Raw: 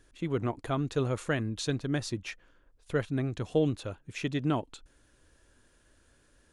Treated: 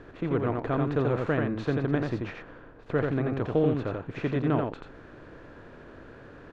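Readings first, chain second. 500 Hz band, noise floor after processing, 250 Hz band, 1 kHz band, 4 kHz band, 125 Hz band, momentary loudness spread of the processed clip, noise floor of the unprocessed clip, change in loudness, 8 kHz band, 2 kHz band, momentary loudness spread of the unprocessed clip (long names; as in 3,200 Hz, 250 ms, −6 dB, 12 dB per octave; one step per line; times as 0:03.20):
+4.5 dB, −49 dBFS, +4.0 dB, +4.5 dB, −7.0 dB, +3.5 dB, 22 LU, −66 dBFS, +3.5 dB, below −15 dB, +2.5 dB, 9 LU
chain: compressor on every frequency bin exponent 0.6
low-pass filter 1,800 Hz 12 dB per octave
single-tap delay 86 ms −3.5 dB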